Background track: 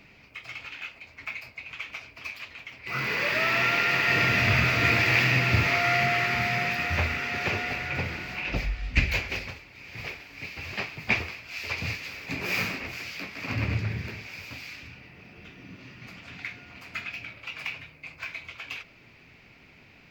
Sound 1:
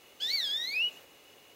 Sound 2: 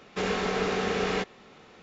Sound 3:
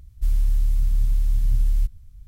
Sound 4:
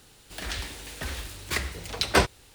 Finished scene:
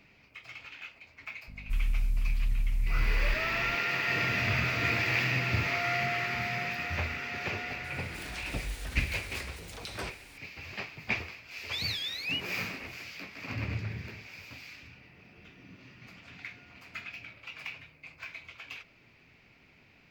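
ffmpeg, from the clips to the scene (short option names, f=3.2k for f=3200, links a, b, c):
-filter_complex "[0:a]volume=-6.5dB[a];[3:a]aeval=exprs='val(0)+0.0158*(sin(2*PI*50*n/s)+sin(2*PI*2*50*n/s)/2+sin(2*PI*3*50*n/s)/3+sin(2*PI*4*50*n/s)/4+sin(2*PI*5*50*n/s)/5)':c=same[b];[4:a]acompressor=threshold=-43dB:ratio=2.5:attack=1.8:release=23:knee=1:detection=peak[c];[b]atrim=end=2.27,asetpts=PTS-STARTPTS,volume=-8.5dB,afade=t=in:d=0.004:c=hsin,afade=t=out:st=2.266:d=0.004:c=hsin,adelay=1480[d];[c]atrim=end=2.54,asetpts=PTS-STARTPTS,volume=-1.5dB,afade=t=in:d=0.004:c=hsin,afade=t=out:st=2.536:d=0.004:c=hsin,adelay=7840[e];[1:a]atrim=end=1.55,asetpts=PTS-STARTPTS,volume=-3.5dB,afade=t=in:d=0.004:c=hsin,afade=t=out:st=1.546:d=0.004:c=hsin,adelay=11510[f];[a][d][e][f]amix=inputs=4:normalize=0"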